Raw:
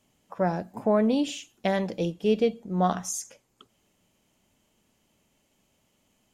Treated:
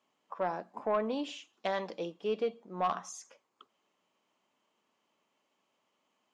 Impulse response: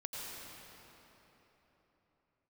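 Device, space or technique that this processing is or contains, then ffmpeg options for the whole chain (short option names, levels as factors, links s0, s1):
intercom: -filter_complex "[0:a]highpass=330,lowpass=4800,equalizer=f=1100:t=o:w=0.55:g=9,asoftclip=type=tanh:threshold=0.2,asettb=1/sr,asplit=3[s0][s1][s2];[s0]atrim=end=1.534[s3];[s1]atrim=start=1.53:end=1.99,asetpts=PTS-STARTPTS,afade=t=in:d=0.004:c=qsin,afade=t=out:st=0.456:d=0.004:c=qsin,equalizer=f=4800:t=o:w=1.3:g=5.5[s4];[s2]atrim=start=1.986[s5];[s3][s4]acrossfade=d=0.004:c1=hsin:c2=qsin[s6];[s6][s5]acrossfade=d=0.004:c1=qsin:c2=hsin,volume=0.473"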